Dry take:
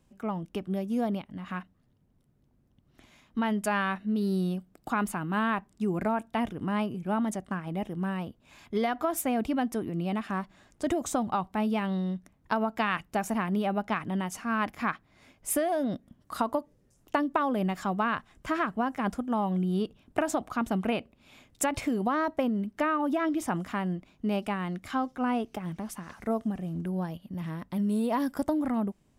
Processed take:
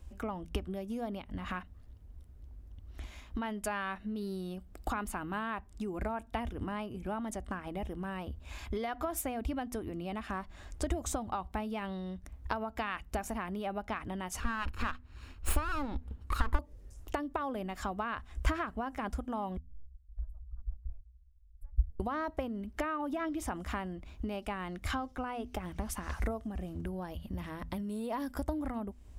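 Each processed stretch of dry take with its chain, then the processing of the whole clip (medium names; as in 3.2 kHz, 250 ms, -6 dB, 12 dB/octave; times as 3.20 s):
14.40–16.59 s: comb filter that takes the minimum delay 0.73 ms + treble shelf 5.9 kHz -7 dB + band-stop 5.8 kHz
19.57–22.00 s: companding laws mixed up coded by A + inverse Chebyshev band-stop 140–7000 Hz, stop band 50 dB + tape spacing loss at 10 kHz 27 dB
whole clip: compression 6:1, threshold -38 dBFS; resonant low shelf 100 Hz +13.5 dB, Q 3; de-hum 82.03 Hz, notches 3; trim +5.5 dB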